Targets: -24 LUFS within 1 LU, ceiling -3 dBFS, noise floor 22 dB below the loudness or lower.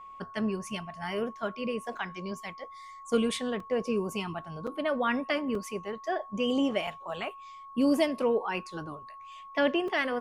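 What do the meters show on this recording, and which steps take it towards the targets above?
dropouts 5; longest dropout 3.0 ms; steady tone 1100 Hz; tone level -44 dBFS; loudness -31.0 LUFS; peak -14.0 dBFS; loudness target -24.0 LUFS
-> interpolate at 1.97/3.6/5.55/6.87/9.88, 3 ms; notch 1100 Hz, Q 30; gain +7 dB

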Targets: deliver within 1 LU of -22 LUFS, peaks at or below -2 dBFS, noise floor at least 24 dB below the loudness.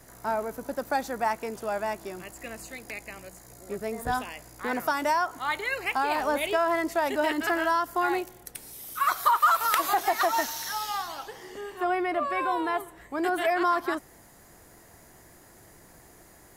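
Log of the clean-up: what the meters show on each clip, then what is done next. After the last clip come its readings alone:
loudness -27.5 LUFS; peak -6.0 dBFS; loudness target -22.0 LUFS
-> gain +5.5 dB; limiter -2 dBFS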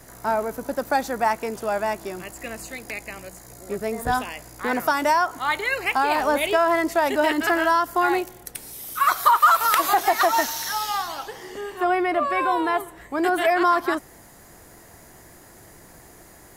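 loudness -22.0 LUFS; peak -2.0 dBFS; noise floor -48 dBFS

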